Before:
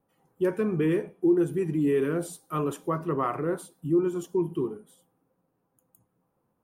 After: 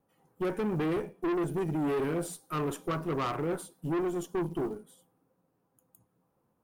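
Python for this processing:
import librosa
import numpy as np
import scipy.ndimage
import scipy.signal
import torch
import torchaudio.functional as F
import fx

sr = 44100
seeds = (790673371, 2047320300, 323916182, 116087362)

y = fx.quant_float(x, sr, bits=4)
y = fx.tube_stage(y, sr, drive_db=29.0, bias=0.5)
y = F.gain(torch.from_numpy(y), 2.0).numpy()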